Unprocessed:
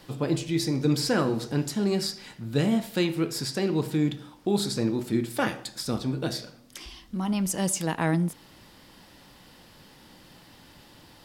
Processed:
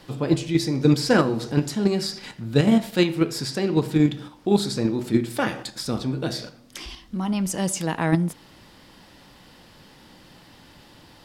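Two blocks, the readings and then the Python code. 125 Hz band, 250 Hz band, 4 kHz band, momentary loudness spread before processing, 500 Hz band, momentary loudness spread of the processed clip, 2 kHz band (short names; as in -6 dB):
+4.5 dB, +4.5 dB, +2.5 dB, 9 LU, +4.5 dB, 11 LU, +4.0 dB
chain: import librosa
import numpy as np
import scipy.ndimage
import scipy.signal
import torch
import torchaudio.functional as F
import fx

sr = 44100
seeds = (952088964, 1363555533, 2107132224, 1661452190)

p1 = fx.high_shelf(x, sr, hz=9900.0, db=-7.5)
p2 = fx.level_steps(p1, sr, step_db=23)
p3 = p1 + F.gain(torch.from_numpy(p2), 0.0).numpy()
y = F.gain(torch.from_numpy(p3), 1.5).numpy()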